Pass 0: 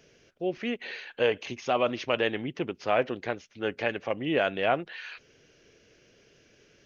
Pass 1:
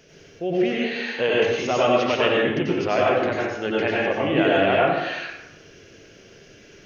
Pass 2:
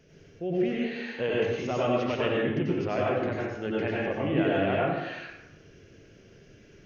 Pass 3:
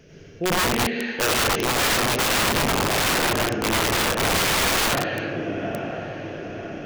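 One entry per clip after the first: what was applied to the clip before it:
in parallel at −0.5 dB: downward compressor, threshold −36 dBFS, peak gain reduction 15.5 dB; on the sum: dense smooth reverb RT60 0.96 s, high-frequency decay 0.65×, pre-delay 80 ms, DRR −5 dB
drawn EQ curve 120 Hz 0 dB, 740 Hz −9 dB, 2,000 Hz −9 dB, 3,600 Hz −12 dB
loose part that buzzes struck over −36 dBFS, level −35 dBFS; feedback delay with all-pass diffusion 1,069 ms, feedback 54%, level −12 dB; wrap-around overflow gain 24.5 dB; level +8.5 dB

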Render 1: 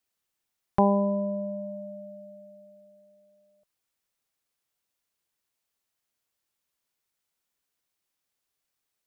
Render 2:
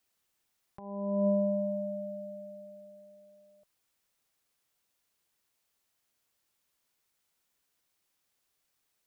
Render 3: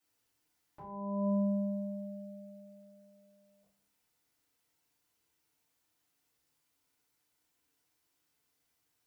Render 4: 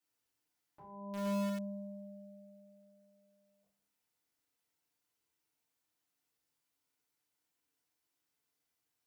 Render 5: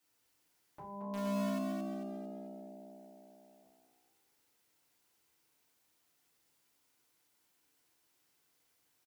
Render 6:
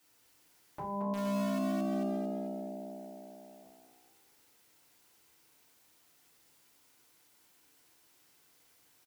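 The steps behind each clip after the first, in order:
compressor whose output falls as the input rises −29 dBFS, ratio −0.5
feedback delay network reverb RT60 0.58 s, low-frequency decay 1.5×, high-frequency decay 0.7×, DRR −9 dB; level −9 dB
low-shelf EQ 88 Hz −6.5 dB; in parallel at −8 dB: bit reduction 5 bits; on the sum: level −6.5 dB
downward compressor 1.5 to 1, threshold −58 dBFS, peak gain reduction 9.5 dB; on a send: echo with shifted repeats 223 ms, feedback 42%, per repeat +62 Hz, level −5 dB; on the sum: level +8.5 dB
brickwall limiter −35.5 dBFS, peak gain reduction 7.5 dB; level +9 dB

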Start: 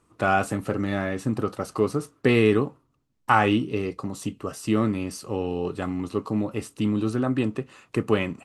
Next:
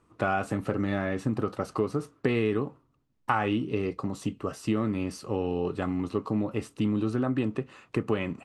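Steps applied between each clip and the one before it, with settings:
high-shelf EQ 6,200 Hz −11.5 dB
downward compressor 4 to 1, threshold −23 dBFS, peak gain reduction 8.5 dB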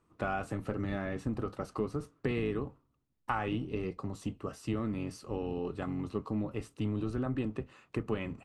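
sub-octave generator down 1 octave, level −5 dB
level −7 dB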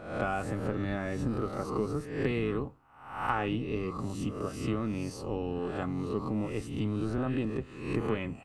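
peak hold with a rise ahead of every peak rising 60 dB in 0.70 s
level +1 dB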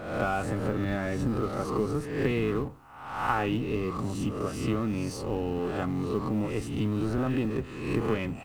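mu-law and A-law mismatch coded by mu
level +2 dB

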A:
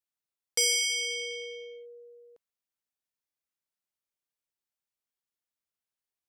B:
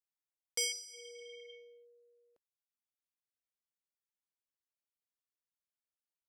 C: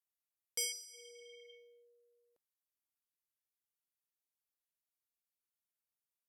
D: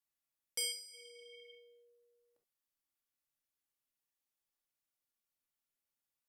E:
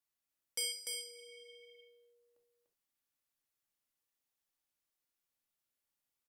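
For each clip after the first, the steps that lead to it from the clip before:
healed spectral selection 0:00.75–0:01.49, 1,100–4,200 Hz after; reverb reduction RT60 0.84 s; level −8 dB
parametric band 13,000 Hz +10.5 dB 0.9 octaves; level −5.5 dB
convolution reverb, pre-delay 3 ms, DRR 1.5 dB; level −1 dB
single-tap delay 295 ms −4 dB

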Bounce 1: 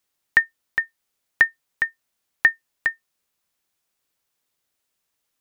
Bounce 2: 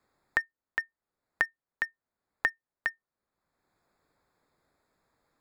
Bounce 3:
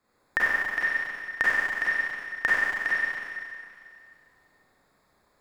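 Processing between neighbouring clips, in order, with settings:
adaptive Wiener filter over 15 samples; multiband upward and downward compressor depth 70%; level −8 dB
four-comb reverb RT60 2.3 s, combs from 31 ms, DRR −8.5 dB

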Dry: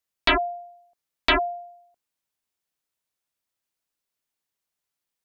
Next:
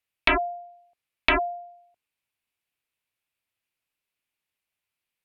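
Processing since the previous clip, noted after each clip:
treble cut that deepens with the level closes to 1,600 Hz, closed at −21.5 dBFS
graphic EQ with 15 bands 100 Hz +6 dB, 2,500 Hz +10 dB, 6,300 Hz −6 dB
level −1.5 dB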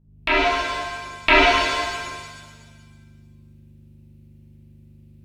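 fade in at the beginning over 0.54 s
mains hum 50 Hz, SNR 24 dB
reverb with rising layers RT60 1.6 s, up +7 semitones, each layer −8 dB, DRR −7.5 dB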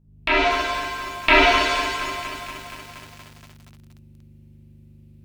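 feedback echo at a low word length 236 ms, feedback 80%, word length 6 bits, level −13.5 dB

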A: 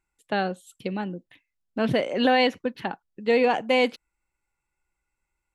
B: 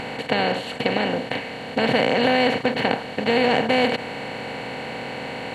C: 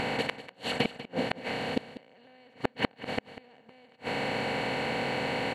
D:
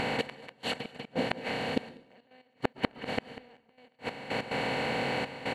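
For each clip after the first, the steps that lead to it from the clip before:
compressor on every frequency bin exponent 0.2; level −4 dB
gate with flip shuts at −12 dBFS, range −38 dB; single-tap delay 194 ms −14.5 dB
gate pattern "xx..x.x..x.xxxxx" 143 BPM −12 dB; dense smooth reverb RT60 0.79 s, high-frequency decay 0.8×, pre-delay 105 ms, DRR 19 dB

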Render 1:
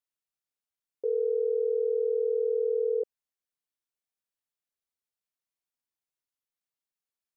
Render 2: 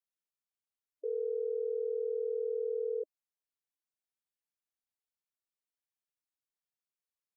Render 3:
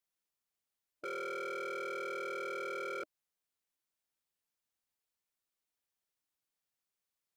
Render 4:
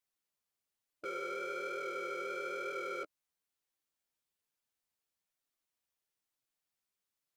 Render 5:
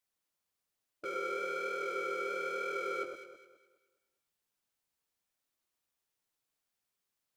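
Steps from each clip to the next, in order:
gate on every frequency bin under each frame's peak −20 dB strong; level −7 dB
wave folding −39 dBFS; level +4 dB
flanger 1.1 Hz, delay 6.6 ms, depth 8.8 ms, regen −2%; level +3 dB
delay that swaps between a low-pass and a high-pass 104 ms, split 1,400 Hz, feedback 58%, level −3.5 dB; level +1.5 dB

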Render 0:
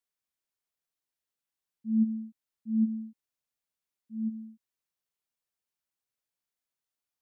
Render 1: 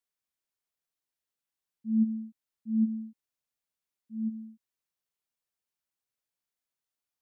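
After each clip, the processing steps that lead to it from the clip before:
no processing that can be heard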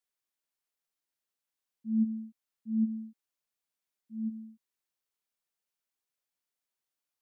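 parametric band 79 Hz −7.5 dB 2.1 octaves

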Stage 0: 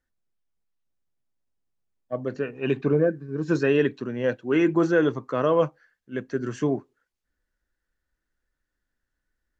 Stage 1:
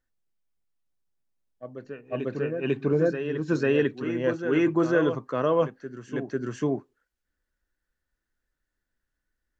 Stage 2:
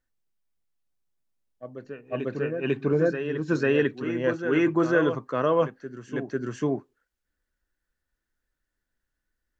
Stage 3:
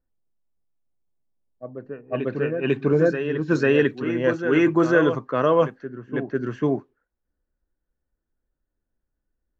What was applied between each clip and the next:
backwards echo 497 ms −8.5 dB; level −2 dB
dynamic equaliser 1,600 Hz, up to +3 dB, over −38 dBFS, Q 1
low-pass that shuts in the quiet parts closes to 750 Hz, open at −20.5 dBFS; level +4 dB

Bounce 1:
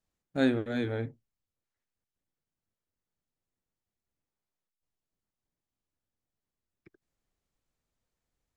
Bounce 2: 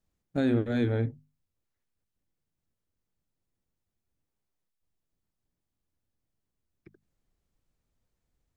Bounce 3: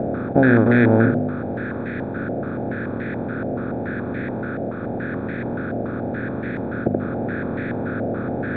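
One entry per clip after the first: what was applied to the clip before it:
low-shelf EQ 320 Hz +9 dB; mains-hum notches 50/100/150/200/250 Hz; brickwall limiter −16.5 dBFS, peak gain reduction 7.5 dB
compressor on every frequency bin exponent 0.2; parametric band 190 Hz +9.5 dB 0.28 octaves; low-pass on a step sequencer 7 Hz 700–1,900 Hz; level +6 dB

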